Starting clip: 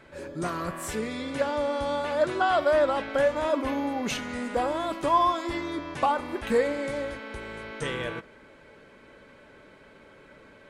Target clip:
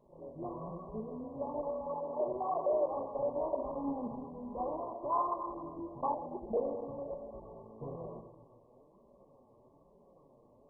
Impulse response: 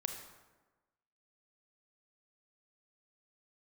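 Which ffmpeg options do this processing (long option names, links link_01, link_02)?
-filter_complex "[0:a]asettb=1/sr,asplit=3[link_01][link_02][link_03];[link_01]atrim=end=1.804[link_04];[link_02]atrim=start=1.8:end=2.92,asetpts=PTS-STARTPTS,afade=type=in:duration=0.004:curve=qsin,afade=type=out:start_time=1.116:duration=0.004:curve=qsin,highpass=frequency=160:poles=1[link_05];[link_03]atrim=start=2.916[link_06];[link_04][link_05]acrossfade=duration=0.004:curve1=hsin:curve2=qsin[link_07];[link_07][link_06]acrossfade=duration=0.004:curve1=qsin:curve2=hsin[link_08];[1:a]atrim=start_sample=2205[link_09];[link_08][link_09]afir=irnorm=-1:irlink=0,flanger=delay=5:depth=3.5:regen=-7:speed=1.1:shape=sinusoidal,asettb=1/sr,asplit=3[link_10][link_11][link_12];[link_10]atrim=end=4.914[link_13];[link_11]atrim=start=4.91:end=5.64,asetpts=PTS-STARTPTS,afade=type=in:duration=0.004:curve=qsin,afade=type=out:start_time=0.726:duration=0.004:curve=qsin,bass=frequency=250:gain=-7,treble=frequency=4000:gain=7[link_14];[link_12]atrim=start=5.636[link_15];[link_13][link_14]acrossfade=duration=0.004:curve1=hsin:curve2=qsin[link_16];[link_16][link_15]acrossfade=duration=0.004:curve1=qsin:curve2=hsin,asettb=1/sr,asplit=3[link_17][link_18][link_19];[link_17]atrim=end=6.144[link_20];[link_18]atrim=start=6.14:end=6.57,asetpts=PTS-STARTPTS,afade=type=in:duration=0.004:curve=qsin,afade=type=out:start_time=0.426:duration=0.004:curve=qsin,asuperstop=centerf=1400:order=20:qfactor=0.94[link_21];[link_19]atrim=start=6.566[link_22];[link_20][link_21]acrossfade=duration=0.004:curve1=hsin:curve2=qsin[link_23];[link_23][link_22]acrossfade=duration=0.004:curve1=qsin:curve2=hsin,volume=-7dB" -ar 24000 -c:a mp2 -b:a 8k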